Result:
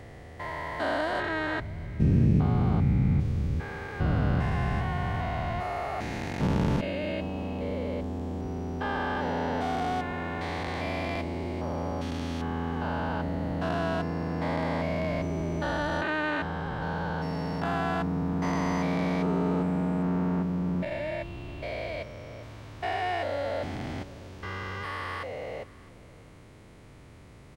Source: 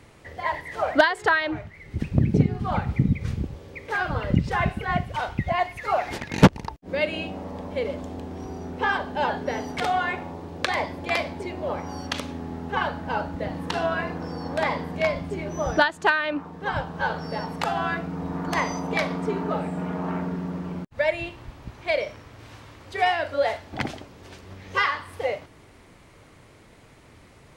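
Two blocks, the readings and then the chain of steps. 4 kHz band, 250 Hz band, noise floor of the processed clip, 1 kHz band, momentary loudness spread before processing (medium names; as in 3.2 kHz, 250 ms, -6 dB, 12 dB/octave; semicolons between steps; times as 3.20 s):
-7.5 dB, -0.5 dB, -50 dBFS, -5.5 dB, 13 LU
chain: spectrogram pixelated in time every 400 ms; bass shelf 360 Hz +7 dB; delay 659 ms -22.5 dB; trim -2 dB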